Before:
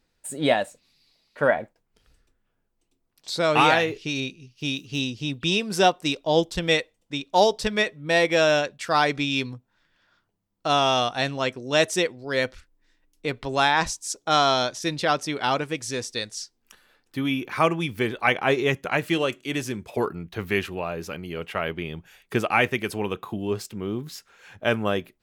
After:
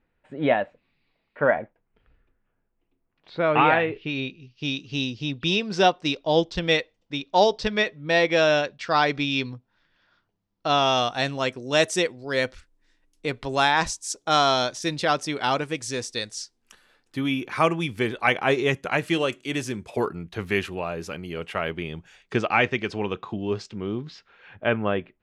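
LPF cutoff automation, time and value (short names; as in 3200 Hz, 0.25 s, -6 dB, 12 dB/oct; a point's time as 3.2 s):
LPF 24 dB/oct
3.77 s 2600 Hz
4.75 s 5500 Hz
10.74 s 5500 Hz
11.4 s 11000 Hz
21.82 s 11000 Hz
22.48 s 5800 Hz
23.85 s 5800 Hz
24.65 s 2900 Hz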